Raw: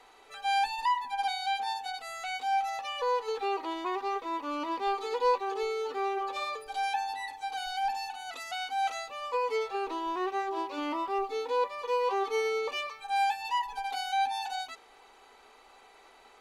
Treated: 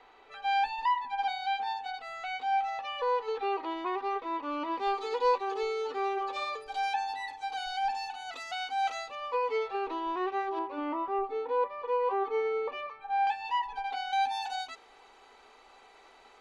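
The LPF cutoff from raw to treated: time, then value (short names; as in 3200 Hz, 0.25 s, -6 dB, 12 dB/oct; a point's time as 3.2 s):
3300 Hz
from 4.78 s 6300 Hz
from 9.15 s 3500 Hz
from 10.59 s 1700 Hz
from 13.27 s 3300 Hz
from 14.13 s 7500 Hz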